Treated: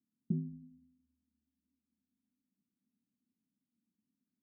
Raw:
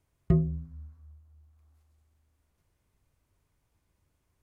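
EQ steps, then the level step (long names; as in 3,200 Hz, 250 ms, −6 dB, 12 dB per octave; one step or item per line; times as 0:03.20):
flat-topped band-pass 230 Hz, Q 3.5
+3.5 dB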